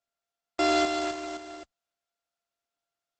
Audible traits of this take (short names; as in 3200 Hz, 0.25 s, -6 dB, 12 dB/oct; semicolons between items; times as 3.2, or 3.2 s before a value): a buzz of ramps at a fixed pitch in blocks of 64 samples; Opus